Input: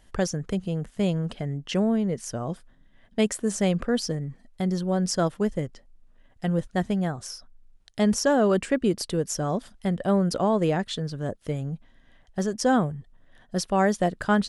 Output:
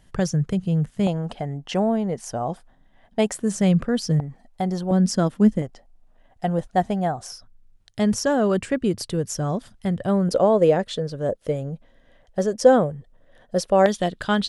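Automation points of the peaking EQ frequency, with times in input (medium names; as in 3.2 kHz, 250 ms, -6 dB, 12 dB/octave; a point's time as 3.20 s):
peaking EQ +12 dB 0.67 oct
140 Hz
from 1.07 s 780 Hz
from 3.34 s 150 Hz
from 4.20 s 770 Hz
from 4.91 s 220 Hz
from 5.62 s 740 Hz
from 7.32 s 110 Hz
from 10.29 s 530 Hz
from 13.86 s 3.5 kHz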